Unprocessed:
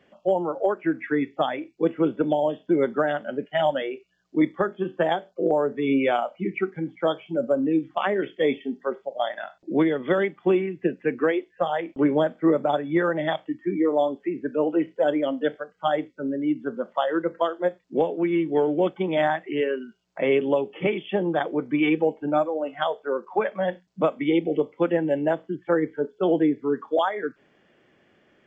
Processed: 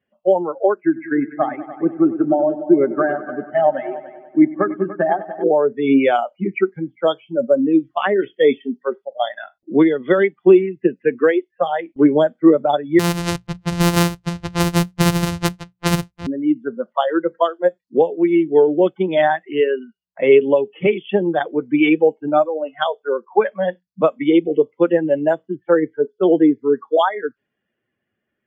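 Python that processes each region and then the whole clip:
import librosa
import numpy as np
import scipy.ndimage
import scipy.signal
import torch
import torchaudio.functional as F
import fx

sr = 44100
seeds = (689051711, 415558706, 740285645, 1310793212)

y = fx.chain(x, sr, fx.lowpass(hz=2100.0, slope=24),
    fx.notch_comb(f0_hz=480.0),
    fx.echo_heads(ms=97, heads='all three', feedback_pct=53, wet_db=-13), at=(0.8, 5.44))
y = fx.chain(y, sr, fx.sample_sort(block=256),
    fx.hum_notches(base_hz=60, count=3), at=(12.99, 16.27))
y = fx.bin_expand(y, sr, power=1.5)
y = fx.env_lowpass(y, sr, base_hz=2400.0, full_db=-23.0)
y = fx.dynamic_eq(y, sr, hz=390.0, q=2.9, threshold_db=-39.0, ratio=4.0, max_db=4)
y = y * librosa.db_to_amplitude(8.5)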